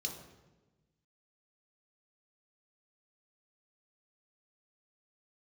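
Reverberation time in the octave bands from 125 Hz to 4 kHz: 1.7, 1.5, 1.3, 1.1, 0.95, 0.80 seconds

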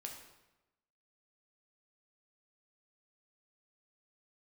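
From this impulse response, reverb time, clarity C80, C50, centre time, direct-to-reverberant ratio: 1.0 s, 8.0 dB, 5.5 dB, 33 ms, 1.0 dB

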